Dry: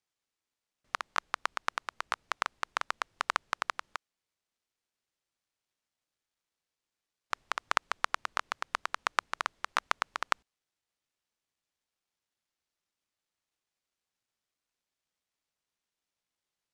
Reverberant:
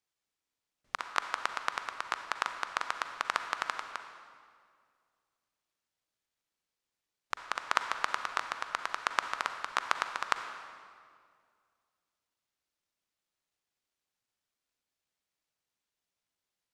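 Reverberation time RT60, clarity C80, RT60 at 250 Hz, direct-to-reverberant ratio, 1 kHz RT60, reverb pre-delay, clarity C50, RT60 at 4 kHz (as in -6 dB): 2.1 s, 8.5 dB, 2.4 s, 7.0 dB, 2.0 s, 38 ms, 7.5 dB, 1.6 s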